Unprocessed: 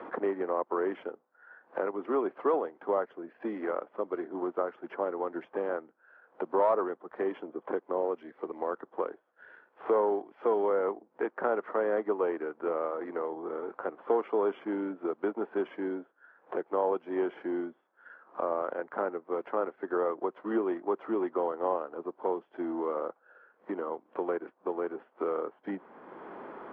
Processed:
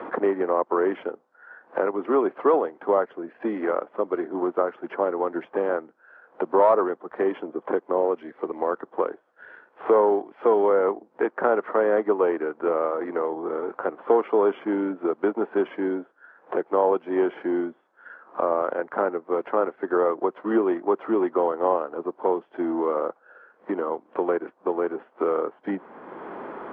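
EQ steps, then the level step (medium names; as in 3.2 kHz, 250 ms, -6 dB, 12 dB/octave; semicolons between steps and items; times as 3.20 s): distance through air 61 m; +8.0 dB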